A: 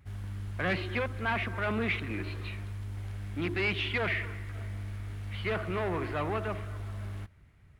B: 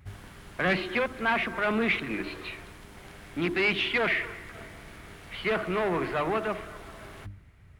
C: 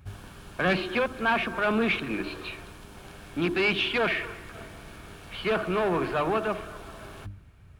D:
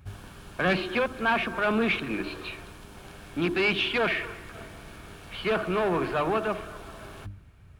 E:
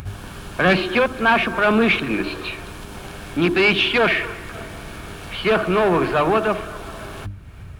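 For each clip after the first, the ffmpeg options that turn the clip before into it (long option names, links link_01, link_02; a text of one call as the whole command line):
ffmpeg -i in.wav -af "bandreject=frequency=50:width_type=h:width=6,bandreject=frequency=100:width_type=h:width=6,bandreject=frequency=150:width_type=h:width=6,bandreject=frequency=200:width_type=h:width=6,bandreject=frequency=250:width_type=h:width=6,bandreject=frequency=300:width_type=h:width=6,volume=5dB" out.wav
ffmpeg -i in.wav -af "bandreject=frequency=2000:width=5,volume=2dB" out.wav
ffmpeg -i in.wav -af anull out.wav
ffmpeg -i in.wav -af "acompressor=mode=upward:threshold=-37dB:ratio=2.5,volume=8.5dB" out.wav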